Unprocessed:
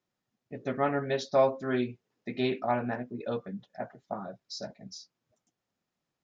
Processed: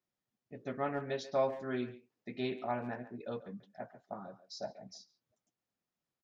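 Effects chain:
0:04.44–0:04.96: parametric band 760 Hz +12 dB 0.81 octaves
far-end echo of a speakerphone 140 ms, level −14 dB
level −7.5 dB

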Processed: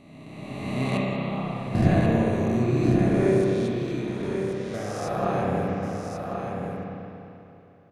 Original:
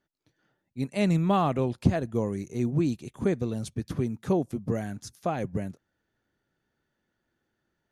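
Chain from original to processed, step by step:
peak hold with a rise ahead of every peak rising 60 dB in 2.03 s
0:00.97–0:01.81: output level in coarse steps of 17 dB
0:03.44–0:04.74: resonant band-pass 3,200 Hz, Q 1.3
single-tap delay 1,088 ms −6 dB
spring reverb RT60 3 s, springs 31/57 ms, chirp 40 ms, DRR −4 dB
level −4.5 dB

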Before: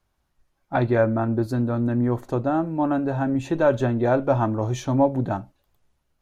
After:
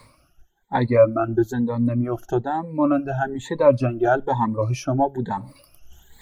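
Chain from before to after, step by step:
rippled gain that drifts along the octave scale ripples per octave 0.97, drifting +1.1 Hz, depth 16 dB
reverb reduction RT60 1.1 s
reversed playback
upward compression, threshold −26 dBFS
reversed playback

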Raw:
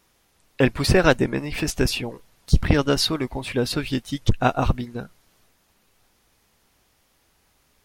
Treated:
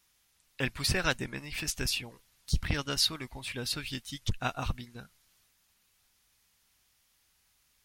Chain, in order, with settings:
guitar amp tone stack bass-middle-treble 5-5-5
level +2.5 dB

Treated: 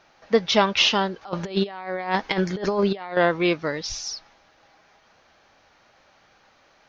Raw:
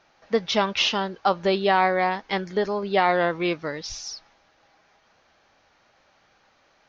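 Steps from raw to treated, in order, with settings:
0:01.21–0:03.17: compressor whose output falls as the input rises −28 dBFS, ratio −0.5
level +3.5 dB

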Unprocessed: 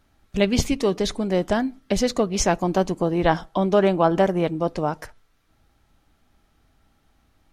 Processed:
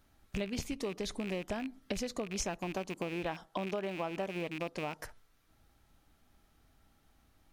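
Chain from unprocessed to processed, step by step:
loose part that buzzes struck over −29 dBFS, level −19 dBFS
0:02.76–0:05.00: low-shelf EQ 93 Hz −11.5 dB
downward compressor 6 to 1, threshold −29 dBFS, peak gain reduction 15 dB
high-shelf EQ 9,200 Hz +7.5 dB
level −5 dB

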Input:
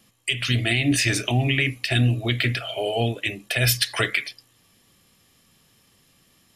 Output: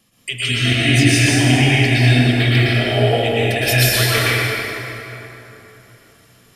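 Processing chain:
dense smooth reverb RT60 3.5 s, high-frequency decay 0.6×, pre-delay 100 ms, DRR −9.5 dB
level −1.5 dB

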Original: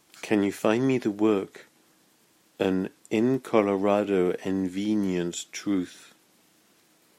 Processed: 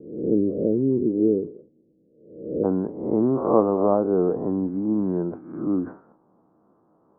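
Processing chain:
peak hold with a rise ahead of every peak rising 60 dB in 0.74 s
Butterworth low-pass 510 Hz 48 dB per octave, from 0:02.63 1,200 Hz
level that may fall only so fast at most 150 dB per second
level +2 dB

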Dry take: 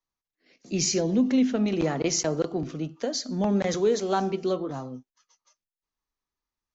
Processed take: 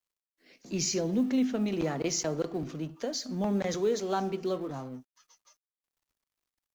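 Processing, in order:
mu-law and A-law mismatch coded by mu
level −5.5 dB

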